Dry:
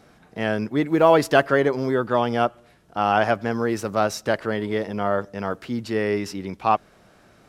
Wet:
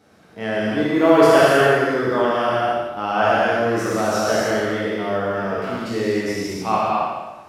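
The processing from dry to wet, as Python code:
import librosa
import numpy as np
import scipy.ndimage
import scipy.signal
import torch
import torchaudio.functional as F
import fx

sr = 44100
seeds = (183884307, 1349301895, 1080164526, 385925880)

y = fx.spec_trails(x, sr, decay_s=1.13)
y = scipy.signal.sosfilt(scipy.signal.butter(2, 78.0, 'highpass', fs=sr, output='sos'), y)
y = fx.rev_gated(y, sr, seeds[0], gate_ms=320, shape='flat', drr_db=-5.5)
y = y * 10.0 ** (-6.0 / 20.0)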